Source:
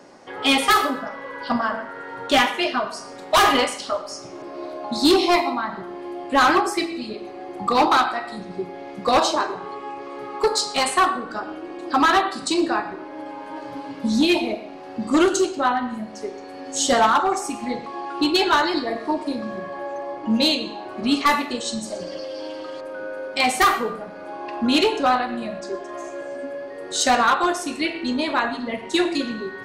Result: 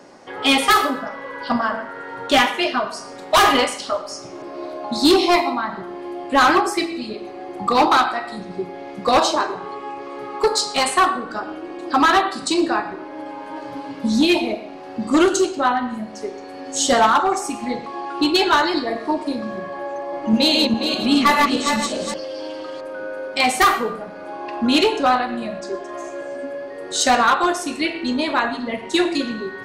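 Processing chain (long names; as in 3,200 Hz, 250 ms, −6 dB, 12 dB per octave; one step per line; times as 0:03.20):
0:19.92–0:22.14: feedback delay that plays each chunk backwards 205 ms, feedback 52%, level −2 dB
level +2 dB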